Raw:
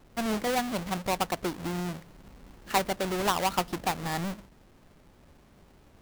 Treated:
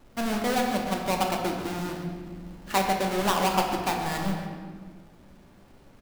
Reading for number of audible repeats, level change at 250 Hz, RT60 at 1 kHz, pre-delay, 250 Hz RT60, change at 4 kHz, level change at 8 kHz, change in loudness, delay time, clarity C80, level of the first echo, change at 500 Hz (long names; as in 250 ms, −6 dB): 1, +3.5 dB, 1.5 s, 3 ms, 2.6 s, +2.5 dB, +1.5 dB, +2.5 dB, 141 ms, 4.5 dB, −12.5 dB, +3.0 dB